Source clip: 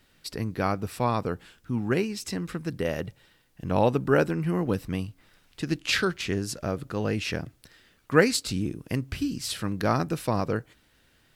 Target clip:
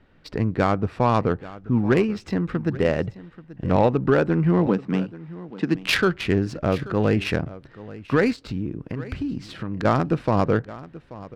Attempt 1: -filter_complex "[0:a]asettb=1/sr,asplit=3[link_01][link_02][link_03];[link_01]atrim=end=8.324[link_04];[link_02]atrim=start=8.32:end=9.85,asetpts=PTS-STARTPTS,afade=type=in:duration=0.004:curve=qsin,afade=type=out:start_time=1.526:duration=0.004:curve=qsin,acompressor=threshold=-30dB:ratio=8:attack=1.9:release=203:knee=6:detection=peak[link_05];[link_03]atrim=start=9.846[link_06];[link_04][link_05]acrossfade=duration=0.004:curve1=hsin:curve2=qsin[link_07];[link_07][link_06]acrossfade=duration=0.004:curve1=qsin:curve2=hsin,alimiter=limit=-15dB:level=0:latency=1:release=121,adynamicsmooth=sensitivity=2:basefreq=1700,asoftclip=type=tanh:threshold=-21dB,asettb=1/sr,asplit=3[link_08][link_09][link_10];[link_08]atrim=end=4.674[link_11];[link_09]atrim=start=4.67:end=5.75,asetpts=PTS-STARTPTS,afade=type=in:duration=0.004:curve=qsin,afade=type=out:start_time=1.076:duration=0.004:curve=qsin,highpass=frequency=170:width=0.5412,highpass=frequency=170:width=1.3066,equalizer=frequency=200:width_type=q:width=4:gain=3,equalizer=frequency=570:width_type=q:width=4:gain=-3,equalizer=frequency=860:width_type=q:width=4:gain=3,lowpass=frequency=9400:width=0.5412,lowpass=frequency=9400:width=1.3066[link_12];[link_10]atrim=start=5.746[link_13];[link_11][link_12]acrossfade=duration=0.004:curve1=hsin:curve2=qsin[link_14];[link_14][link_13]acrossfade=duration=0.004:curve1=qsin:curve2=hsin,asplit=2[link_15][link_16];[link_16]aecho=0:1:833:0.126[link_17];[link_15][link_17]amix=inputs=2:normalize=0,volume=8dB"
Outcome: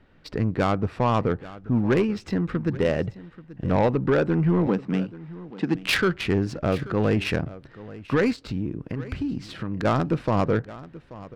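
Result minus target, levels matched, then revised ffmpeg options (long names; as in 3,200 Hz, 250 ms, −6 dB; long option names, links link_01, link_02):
soft clipping: distortion +19 dB
-filter_complex "[0:a]asettb=1/sr,asplit=3[link_01][link_02][link_03];[link_01]atrim=end=8.324[link_04];[link_02]atrim=start=8.32:end=9.85,asetpts=PTS-STARTPTS,afade=type=in:duration=0.004:curve=qsin,afade=type=out:start_time=1.526:duration=0.004:curve=qsin,acompressor=threshold=-30dB:ratio=8:attack=1.9:release=203:knee=6:detection=peak[link_05];[link_03]atrim=start=9.846[link_06];[link_04][link_05]acrossfade=duration=0.004:curve1=hsin:curve2=qsin[link_07];[link_07][link_06]acrossfade=duration=0.004:curve1=qsin:curve2=hsin,alimiter=limit=-15dB:level=0:latency=1:release=121,adynamicsmooth=sensitivity=2:basefreq=1700,asoftclip=type=tanh:threshold=-9.5dB,asettb=1/sr,asplit=3[link_08][link_09][link_10];[link_08]atrim=end=4.674[link_11];[link_09]atrim=start=4.67:end=5.75,asetpts=PTS-STARTPTS,afade=type=in:duration=0.004:curve=qsin,afade=type=out:start_time=1.076:duration=0.004:curve=qsin,highpass=frequency=170:width=0.5412,highpass=frequency=170:width=1.3066,equalizer=frequency=200:width_type=q:width=4:gain=3,equalizer=frequency=570:width_type=q:width=4:gain=-3,equalizer=frequency=860:width_type=q:width=4:gain=3,lowpass=frequency=9400:width=0.5412,lowpass=frequency=9400:width=1.3066[link_12];[link_10]atrim=start=5.746[link_13];[link_11][link_12]acrossfade=duration=0.004:curve1=hsin:curve2=qsin[link_14];[link_14][link_13]acrossfade=duration=0.004:curve1=qsin:curve2=hsin,asplit=2[link_15][link_16];[link_16]aecho=0:1:833:0.126[link_17];[link_15][link_17]amix=inputs=2:normalize=0,volume=8dB"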